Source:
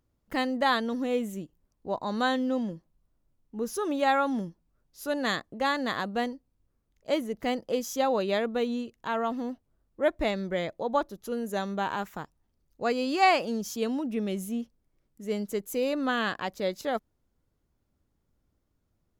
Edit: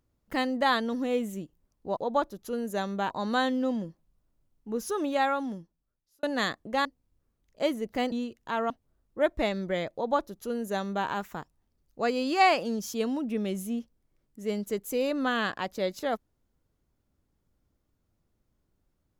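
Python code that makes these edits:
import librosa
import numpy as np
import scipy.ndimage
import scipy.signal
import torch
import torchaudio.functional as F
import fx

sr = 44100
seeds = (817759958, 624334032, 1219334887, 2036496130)

y = fx.edit(x, sr, fx.fade_out_span(start_s=3.84, length_s=1.26),
    fx.cut(start_s=5.72, length_s=0.61),
    fx.cut(start_s=7.6, length_s=1.09),
    fx.cut(start_s=9.27, length_s=0.25),
    fx.duplicate(start_s=10.76, length_s=1.13, to_s=1.97), tone=tone)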